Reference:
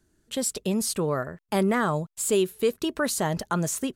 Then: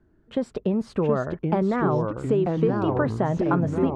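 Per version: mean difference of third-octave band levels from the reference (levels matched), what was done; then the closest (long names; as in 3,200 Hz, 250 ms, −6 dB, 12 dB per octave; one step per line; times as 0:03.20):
12.0 dB: low-pass filter 1,300 Hz 12 dB per octave
downward compressor, threshold −26 dBFS, peak gain reduction 8 dB
delay with pitch and tempo change per echo 653 ms, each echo −3 semitones, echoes 3
level +6.5 dB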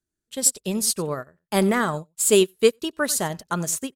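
5.5 dB: high-shelf EQ 2,600 Hz +6 dB
single-tap delay 92 ms −18.5 dB
expander for the loud parts 2.5 to 1, over −37 dBFS
level +7.5 dB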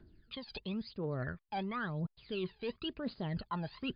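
8.5 dB: phase shifter 0.96 Hz, delay 1.3 ms, feedback 76%
reversed playback
downward compressor 12 to 1, threshold −32 dBFS, peak gain reduction 21 dB
reversed playback
level −2 dB
MP3 56 kbit/s 11,025 Hz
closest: second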